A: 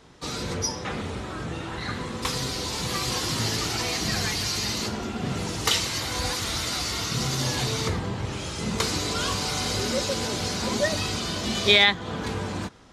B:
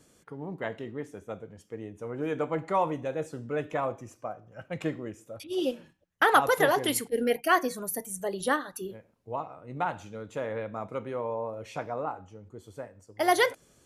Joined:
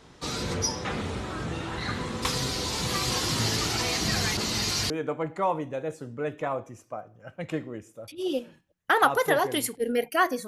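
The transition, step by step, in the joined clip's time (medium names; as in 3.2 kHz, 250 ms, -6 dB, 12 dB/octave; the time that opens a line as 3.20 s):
A
4.37–4.90 s: reverse
4.90 s: go over to B from 2.22 s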